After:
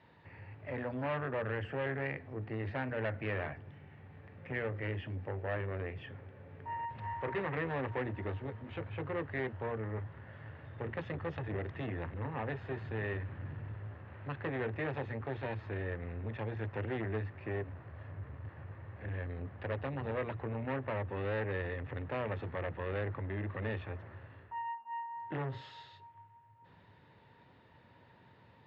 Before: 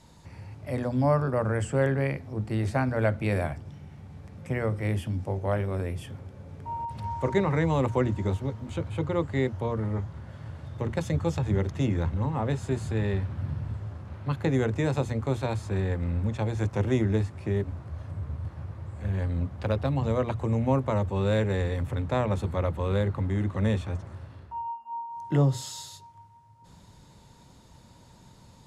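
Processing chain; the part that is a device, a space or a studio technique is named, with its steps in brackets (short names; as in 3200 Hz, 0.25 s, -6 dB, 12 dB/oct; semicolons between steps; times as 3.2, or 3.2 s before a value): guitar amplifier (tube stage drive 27 dB, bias 0.25; tone controls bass -5 dB, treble -12 dB; speaker cabinet 93–3900 Hz, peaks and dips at 100 Hz +6 dB, 200 Hz -3 dB, 440 Hz +3 dB, 1800 Hz +10 dB, 2700 Hz +5 dB); gain -4.5 dB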